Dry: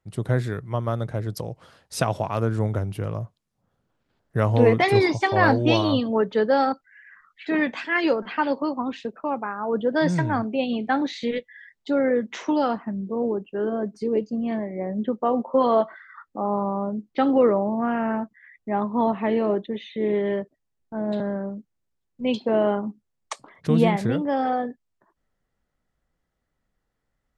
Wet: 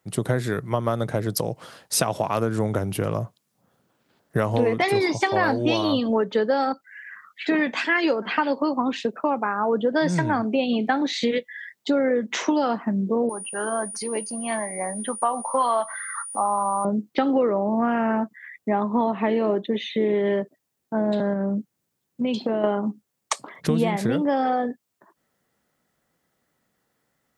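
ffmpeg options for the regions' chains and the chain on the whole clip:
-filter_complex "[0:a]asettb=1/sr,asplit=3[a][b][c];[a]atrim=end=13.294[d];[b]atrim=start=13.29:end=16.85,asetpts=PTS-STARTPTS,afade=t=in:d=0.004:c=qsin,afade=t=out:st=3.556:d=0.004:c=qsin,lowshelf=f=610:t=q:w=1.5:g=-12,acompressor=mode=upward:threshold=-38dB:ratio=2.5:attack=3.2:release=140:knee=2.83:detection=peak,aeval=exprs='val(0)+0.00447*sin(2*PI*9500*n/s)':c=same[e];[c]atrim=start=16.846[f];[d][e]acrossfade=d=0.004:c1=hsin:c2=qsin[g];[g][f]acrossfade=d=0.004:c1=qsin:c2=hsin,asettb=1/sr,asplit=3[h][i][j];[h]atrim=end=21.334[k];[i]atrim=start=21.33:end=22.64,asetpts=PTS-STARTPTS,afade=t=in:d=0.004:c=qsin,afade=t=out:st=1.306:d=0.004:c=qsin,equalizer=f=140:w=0.7:g=5,acompressor=threshold=-27dB:ratio=6:attack=3.2:release=140:knee=1:detection=peak[l];[j]atrim=start=22.636[m];[k][l]acrossfade=d=0.004:c1=hsin:c2=qsin[n];[n][m]acrossfade=d=0.004:c1=qsin:c2=hsin,highpass=150,highshelf=f=7.9k:g=9.5,acompressor=threshold=-27dB:ratio=5,volume=8dB"

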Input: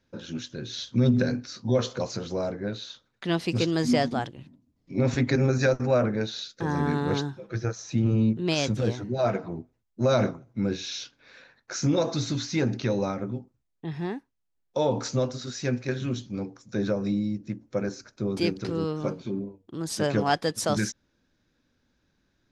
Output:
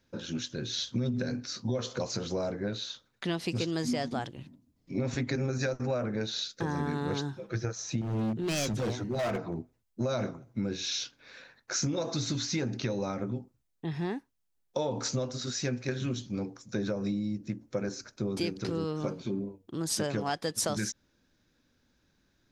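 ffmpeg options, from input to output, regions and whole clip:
-filter_complex "[0:a]asettb=1/sr,asplit=3[a][b][c];[a]atrim=end=8.014[d];[b]atrim=start=8.01:end=9.56,asetpts=PTS-STARTPTS,afade=t=in:d=0.004:c=qsin,afade=t=out:st=1.546:d=0.004:c=qsin,bandreject=f=60:t=h:w=6,bandreject=f=120:t=h:w=6,bandreject=f=180:t=h:w=6,bandreject=f=240:t=h:w=6,volume=25.5dB,asoftclip=hard,volume=-25.5dB[e];[c]atrim=start=9.556[f];[d][e]acrossfade=d=0.004:c1=hsin:c2=qsin[g];[g][f]acrossfade=d=0.004:c1=qsin:c2=hsin,acompressor=threshold=-28dB:ratio=6,highshelf=f=5.2k:g=5.5"

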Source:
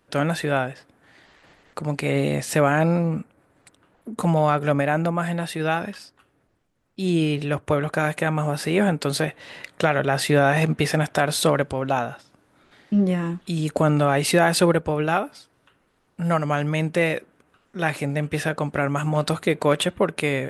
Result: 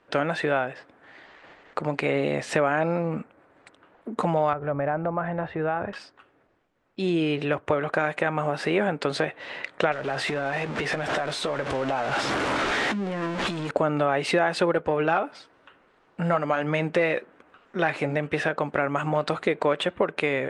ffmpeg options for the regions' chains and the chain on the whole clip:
-filter_complex "[0:a]asettb=1/sr,asplit=3[a][b][c];[a]atrim=end=4.534[d];[b]atrim=start=4.53:end=5.93,asetpts=PTS-STARTPTS,afade=t=in:d=0.004:c=qsin,afade=t=out:st=1.396:d=0.004:c=qsin,lowpass=1.3k,lowshelf=f=130:t=q:w=1.5:g=14,acompressor=threshold=-25dB:ratio=2.5:attack=3.2:release=140:knee=1:detection=peak[e];[c]atrim=start=5.926[f];[d][e]acrossfade=d=0.004:c1=hsin:c2=qsin[g];[g][f]acrossfade=d=0.004:c1=qsin:c2=hsin,asettb=1/sr,asplit=3[h][i][j];[h]atrim=end=9.924[k];[i]atrim=start=9.92:end=13.71,asetpts=PTS-STARTPTS,afade=t=in:d=0.004:c=qsin,afade=t=out:st=3.786:d=0.004:c=qsin,aeval=exprs='val(0)+0.5*0.0891*sgn(val(0))':c=same,acompressor=threshold=-26dB:ratio=8:attack=3.2:release=140:knee=1:detection=peak,asplit=2[l][m];[m]adelay=15,volume=-11dB[n];[l][n]amix=inputs=2:normalize=0,atrim=end_sample=167139[o];[j]atrim=start=13.706[p];[k][o]acrossfade=d=0.004:c1=hsin:c2=qsin[q];[q][p]acrossfade=d=0.004:c1=qsin:c2=hsin,asettb=1/sr,asplit=3[r][s][t];[r]atrim=end=14.744[u];[s]atrim=start=14.74:end=18.16,asetpts=PTS-STARTPTS,afade=t=in:d=0.004:c=qsin,afade=t=out:st=3.416:d=0.004:c=qsin,acontrast=64,flanger=delay=3.5:depth=2.7:regen=-71:speed=1.1:shape=sinusoidal[v];[t]atrim=start=18.156[w];[u][v]acrossfade=d=0.004:c1=hsin:c2=qsin[x];[x][w]acrossfade=d=0.004:c1=qsin:c2=hsin,lowpass=f=8.5k:w=0.5412,lowpass=f=8.5k:w=1.3066,bass=f=250:g=-11,treble=f=4k:g=-13,acompressor=threshold=-28dB:ratio=2.5,volume=5.5dB"

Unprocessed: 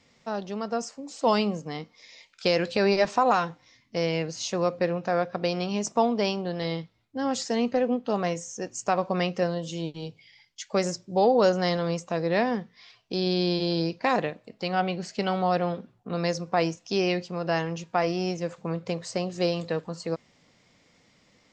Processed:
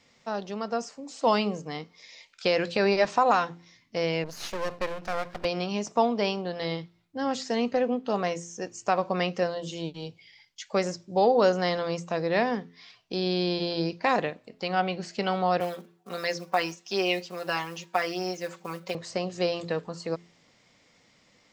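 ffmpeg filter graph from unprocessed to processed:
-filter_complex "[0:a]asettb=1/sr,asplit=3[a][b][c];[a]atrim=end=4.244[d];[b]atrim=start=4.24:end=5.45,asetpts=PTS-STARTPTS,afade=t=in:d=0.004:c=qsin,afade=t=out:st=1.206:d=0.004:c=qsin,aeval=exprs='max(val(0),0)':c=same,adynamicequalizer=threshold=0.00447:dfrequency=1600:dqfactor=0.7:tfrequency=1600:tqfactor=0.7:attack=5:release=100:ratio=0.375:range=2:mode=boostabove:tftype=highshelf[e];[c]atrim=start=5.446[f];[d][e]acrossfade=d=0.004:c1=hsin:c2=qsin[g];[g][f]acrossfade=d=0.004:c1=qsin:c2=hsin,asettb=1/sr,asplit=3[h][i][j];[h]atrim=end=15.604[k];[i]atrim=start=15.6:end=18.95,asetpts=PTS-STARTPTS,afade=t=in:d=0.004:c=qsin,afade=t=out:st=3.346:d=0.004:c=qsin,acrusher=bits=7:mode=log:mix=0:aa=0.000001,highpass=f=660:p=1,aecho=1:1:5.3:0.86,atrim=end_sample=147735[l];[j]atrim=start=18.946[m];[k][l]acrossfade=d=0.004:c1=hsin:c2=qsin[n];[n][m]acrossfade=d=0.004:c1=qsin:c2=hsin,acrossover=split=4600[o][p];[p]acompressor=threshold=-44dB:ratio=4:attack=1:release=60[q];[o][q]amix=inputs=2:normalize=0,lowshelf=f=410:g=-4,bandreject=f=85.94:t=h:w=4,bandreject=f=171.88:t=h:w=4,bandreject=f=257.82:t=h:w=4,bandreject=f=343.76:t=h:w=4,bandreject=f=429.7:t=h:w=4,volume=1dB"

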